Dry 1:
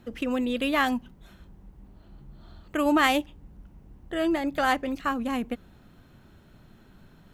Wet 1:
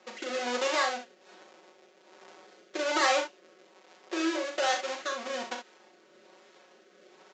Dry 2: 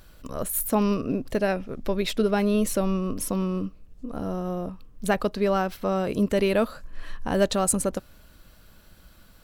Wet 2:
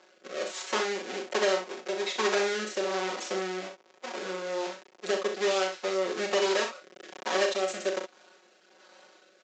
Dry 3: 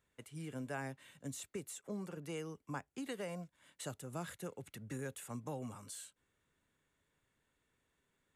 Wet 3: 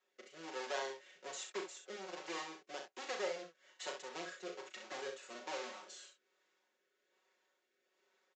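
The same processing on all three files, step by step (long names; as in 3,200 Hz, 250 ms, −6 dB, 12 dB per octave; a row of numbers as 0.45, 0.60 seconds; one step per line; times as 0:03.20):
each half-wave held at its own peak
high-pass filter 380 Hz 24 dB per octave
comb filter 5.4 ms, depth 88%
downward compressor 1.5 to 1, threshold −30 dBFS
rotating-speaker cabinet horn 1.2 Hz
on a send: ambience of single reflections 37 ms −6.5 dB, 65 ms −8 dB
on the sum: downsampling to 16,000 Hz
level −2 dB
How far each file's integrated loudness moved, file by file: −4.0, −4.5, +0.5 LU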